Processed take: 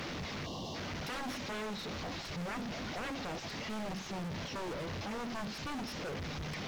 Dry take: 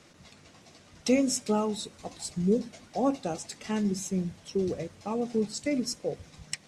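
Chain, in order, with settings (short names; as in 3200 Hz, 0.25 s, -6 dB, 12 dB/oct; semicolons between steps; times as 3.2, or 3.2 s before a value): delta modulation 32 kbps, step -29.5 dBFS; wavefolder -29 dBFS; tone controls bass +1 dB, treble -6 dB; added noise pink -59 dBFS; spectral gain 0.46–0.75, 1200–2700 Hz -21 dB; gain -4 dB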